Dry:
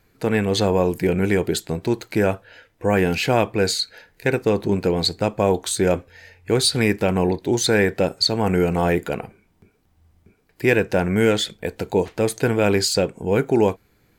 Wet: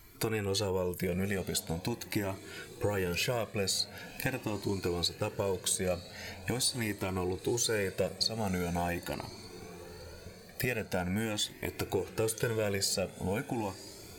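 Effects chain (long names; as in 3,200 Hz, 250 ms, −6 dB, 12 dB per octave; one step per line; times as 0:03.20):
high-shelf EQ 5,500 Hz +11.5 dB
downward compressor 5 to 1, threshold −33 dBFS, peak gain reduction 21 dB
on a send: feedback delay with all-pass diffusion 1,030 ms, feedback 50%, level −16 dB
on the sum: flanger whose copies keep moving one way rising 0.43 Hz
level +6.5 dB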